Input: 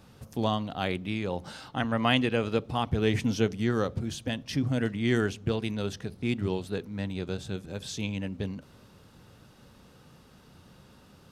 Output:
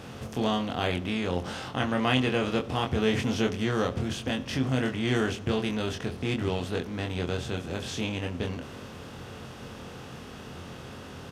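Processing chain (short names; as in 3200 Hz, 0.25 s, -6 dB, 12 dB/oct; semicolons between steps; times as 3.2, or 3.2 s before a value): per-bin compression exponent 0.6; doubler 23 ms -4 dB; gain -4 dB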